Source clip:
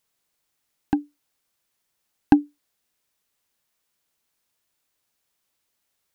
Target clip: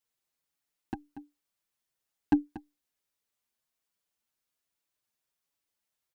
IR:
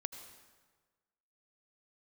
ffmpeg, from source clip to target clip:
-filter_complex "[0:a]aecho=1:1:236:0.2,asplit=2[link_01][link_02];[link_02]adelay=6.3,afreqshift=1.2[link_03];[link_01][link_03]amix=inputs=2:normalize=1,volume=-7dB"

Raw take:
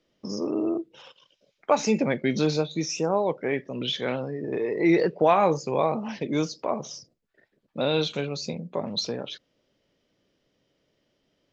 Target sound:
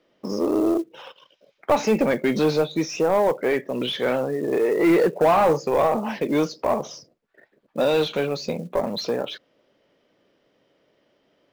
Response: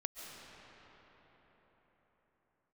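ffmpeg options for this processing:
-filter_complex "[0:a]asplit=2[link_01][link_02];[link_02]highpass=frequency=720:poles=1,volume=20dB,asoftclip=type=tanh:threshold=-8dB[link_03];[link_01][link_03]amix=inputs=2:normalize=0,lowpass=frequency=1000:poles=1,volume=-6dB,acrusher=bits=7:mode=log:mix=0:aa=0.000001"

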